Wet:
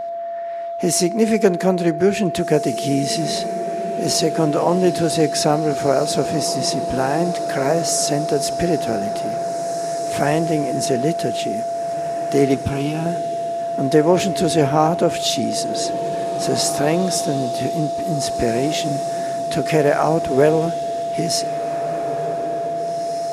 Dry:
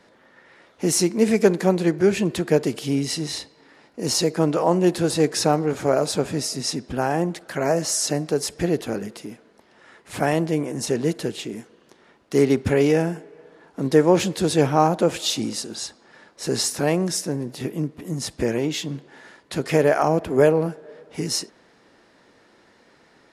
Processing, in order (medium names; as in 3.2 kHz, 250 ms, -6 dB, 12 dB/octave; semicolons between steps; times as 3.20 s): in parallel at -3 dB: compression, threshold -26 dBFS, peak gain reduction 15 dB; on the sum: whistle 680 Hz -24 dBFS; 12.54–13.06 s: static phaser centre 1.9 kHz, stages 6; echo that smears into a reverb 1990 ms, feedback 45%, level -12 dB